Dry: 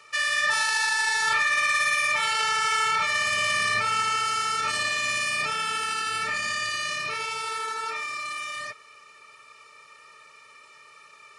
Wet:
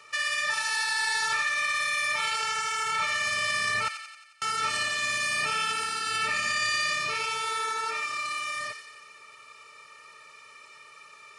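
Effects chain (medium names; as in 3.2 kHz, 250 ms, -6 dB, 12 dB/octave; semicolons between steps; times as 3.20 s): 3.88–4.42 s: gate -19 dBFS, range -49 dB; peak limiter -20 dBFS, peak gain reduction 7 dB; feedback echo behind a high-pass 89 ms, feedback 59%, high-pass 1.8 kHz, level -6.5 dB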